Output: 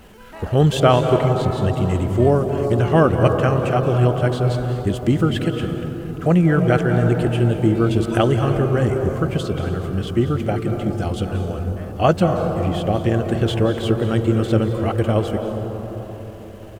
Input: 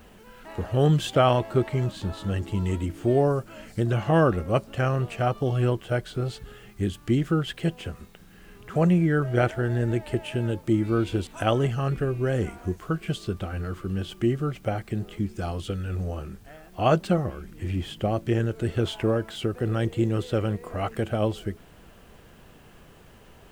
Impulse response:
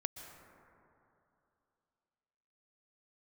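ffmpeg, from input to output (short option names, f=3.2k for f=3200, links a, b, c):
-filter_complex "[0:a]atempo=1.4[a];[1:a]atrim=start_sample=2205,asetrate=29988,aresample=44100[b];[a][b]afir=irnorm=-1:irlink=0,volume=5.5dB"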